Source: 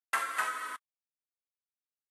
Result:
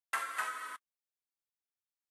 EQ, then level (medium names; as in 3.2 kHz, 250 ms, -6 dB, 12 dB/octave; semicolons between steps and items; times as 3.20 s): bass shelf 360 Hz -4.5 dB; -4.0 dB